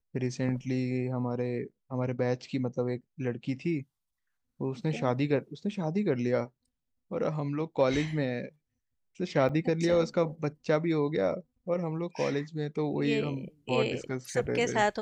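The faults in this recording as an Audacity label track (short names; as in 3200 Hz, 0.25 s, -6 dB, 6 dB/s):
9.490000	9.500000	gap 6.2 ms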